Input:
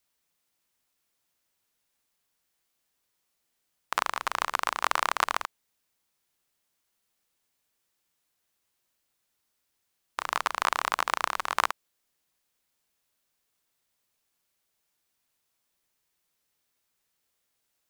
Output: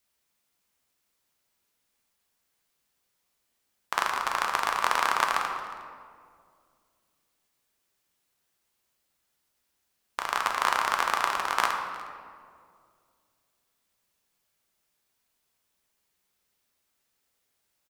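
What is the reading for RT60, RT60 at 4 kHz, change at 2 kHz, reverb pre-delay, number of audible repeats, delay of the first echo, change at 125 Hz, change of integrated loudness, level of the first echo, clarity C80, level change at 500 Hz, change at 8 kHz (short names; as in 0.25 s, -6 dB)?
2.1 s, 1.2 s, +2.5 dB, 3 ms, 1, 0.36 s, n/a, +1.5 dB, -20.5 dB, 6.0 dB, +2.0 dB, +1.0 dB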